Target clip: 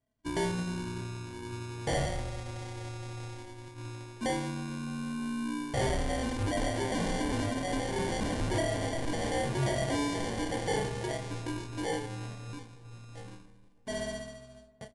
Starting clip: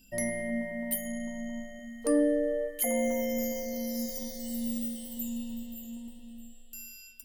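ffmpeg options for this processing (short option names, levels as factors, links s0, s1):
-filter_complex "[0:a]bandreject=f=53.48:t=h:w=4,bandreject=f=106.96:t=h:w=4,bandreject=f=160.44:t=h:w=4,bandreject=f=213.92:t=h:w=4,bandreject=f=267.4:t=h:w=4,bandreject=f=320.88:t=h:w=4,bandreject=f=374.36:t=h:w=4,bandreject=f=427.84:t=h:w=4,bandreject=f=481.32:t=h:w=4,bandreject=f=534.8:t=h:w=4,bandreject=f=588.28:t=h:w=4,bandreject=f=641.76:t=h:w=4,bandreject=f=695.24:t=h:w=4,bandreject=f=748.72:t=h:w=4,bandreject=f=802.2:t=h:w=4,bandreject=f=855.68:t=h:w=4,bandreject=f=909.16:t=h:w=4,bandreject=f=962.64:t=h:w=4,bandreject=f=1016.12:t=h:w=4,bandreject=f=1069.6:t=h:w=4,bandreject=f=1123.08:t=h:w=4,bandreject=f=1176.56:t=h:w=4,agate=range=0.0224:threshold=0.0112:ratio=3:detection=peak,highpass=f=40:p=1,highshelf=f=9600:g=9.5,acrossover=split=6400[s0][s1];[s0]acompressor=threshold=0.00794:ratio=8[s2];[s2][s1]amix=inputs=2:normalize=0,atempo=0.97,acrusher=samples=17:mix=1:aa=0.000001,asoftclip=type=tanh:threshold=0.015,asplit=2[s3][s4];[s4]adelay=15,volume=0.398[s5];[s3][s5]amix=inputs=2:normalize=0,asplit=2[s6][s7];[s7]adelay=152,lowpass=f=3300:p=1,volume=0.0944,asplit=2[s8][s9];[s9]adelay=152,lowpass=f=3300:p=1,volume=0.54,asplit=2[s10][s11];[s11]adelay=152,lowpass=f=3300:p=1,volume=0.54,asplit=2[s12][s13];[s13]adelay=152,lowpass=f=3300:p=1,volume=0.54[s14];[s8][s10][s12][s14]amix=inputs=4:normalize=0[s15];[s6][s15]amix=inputs=2:normalize=0,asetrate=22050,aresample=44100,volume=2.66"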